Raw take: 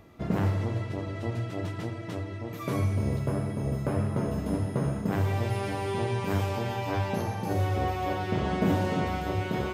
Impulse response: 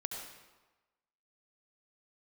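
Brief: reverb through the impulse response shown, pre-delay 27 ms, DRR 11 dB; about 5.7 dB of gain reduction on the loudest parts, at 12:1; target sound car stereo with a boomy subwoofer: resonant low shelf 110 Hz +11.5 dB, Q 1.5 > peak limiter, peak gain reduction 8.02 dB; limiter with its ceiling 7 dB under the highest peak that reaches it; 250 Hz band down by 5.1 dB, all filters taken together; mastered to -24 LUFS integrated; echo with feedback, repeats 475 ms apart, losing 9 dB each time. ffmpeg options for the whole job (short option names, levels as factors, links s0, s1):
-filter_complex "[0:a]equalizer=f=250:t=o:g=-5,acompressor=threshold=0.0398:ratio=12,alimiter=level_in=1.19:limit=0.0631:level=0:latency=1,volume=0.841,aecho=1:1:475|950|1425|1900:0.355|0.124|0.0435|0.0152,asplit=2[s0][s1];[1:a]atrim=start_sample=2205,adelay=27[s2];[s1][s2]afir=irnorm=-1:irlink=0,volume=0.266[s3];[s0][s3]amix=inputs=2:normalize=0,lowshelf=f=110:t=q:w=1.5:g=11.5,volume=2.66,alimiter=limit=0.168:level=0:latency=1"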